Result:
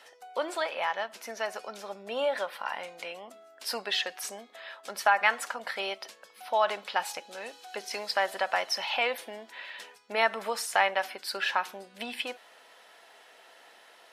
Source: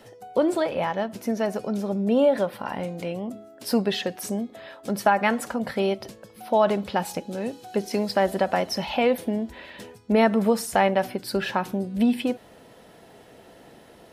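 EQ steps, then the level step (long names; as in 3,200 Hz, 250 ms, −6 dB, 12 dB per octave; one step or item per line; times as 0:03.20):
high-pass filter 1,100 Hz 12 dB per octave
high-shelf EQ 8,900 Hz −10.5 dB
+2.5 dB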